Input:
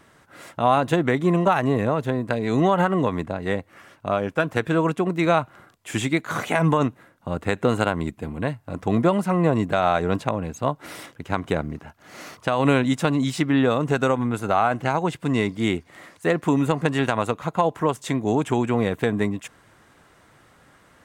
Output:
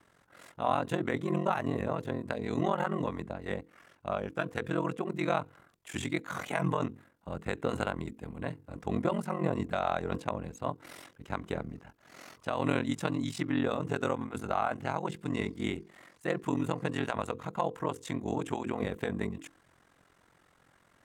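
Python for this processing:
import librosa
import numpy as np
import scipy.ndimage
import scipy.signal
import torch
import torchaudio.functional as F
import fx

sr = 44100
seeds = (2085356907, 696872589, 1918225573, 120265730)

y = fx.hum_notches(x, sr, base_hz=60, count=8)
y = y * np.sin(2.0 * np.pi * 22.0 * np.arange(len(y)) / sr)
y = y * 10.0 ** (-7.5 / 20.0)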